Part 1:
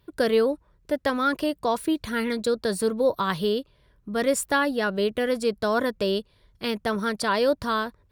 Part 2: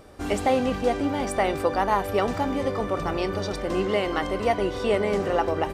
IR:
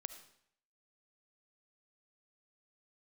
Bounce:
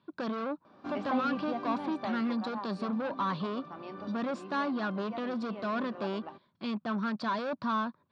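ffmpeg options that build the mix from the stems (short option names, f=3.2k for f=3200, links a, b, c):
-filter_complex "[0:a]asoftclip=type=tanh:threshold=-27dB,volume=-2dB,asplit=2[a][b];[1:a]adelay=650,volume=-1dB,afade=t=out:st=1.68:d=0.74:silence=0.375837[c];[b]apad=whole_len=281521[d];[c][d]sidechaincompress=threshold=-41dB:ratio=8:attack=26:release=939[e];[a][e]amix=inputs=2:normalize=0,highpass=f=150:w=0.5412,highpass=f=150:w=1.3066,equalizer=f=230:t=q:w=4:g=5,equalizer=f=450:t=q:w=4:g=-10,equalizer=f=1.1k:t=q:w=4:g=6,equalizer=f=2k:t=q:w=4:g=-8,equalizer=f=3k:t=q:w=4:g=-5,lowpass=f=4k:w=0.5412,lowpass=f=4k:w=1.3066"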